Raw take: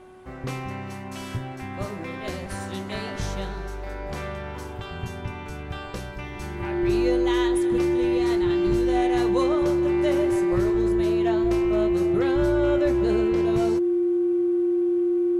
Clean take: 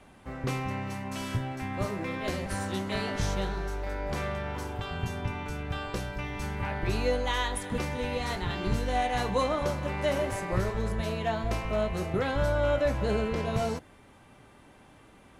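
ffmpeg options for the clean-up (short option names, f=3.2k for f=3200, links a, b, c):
-af "bandreject=f=370.9:t=h:w=4,bandreject=f=741.8:t=h:w=4,bandreject=f=1.1127k:t=h:w=4,bandreject=f=1.4836k:t=h:w=4,bandreject=f=350:w=30"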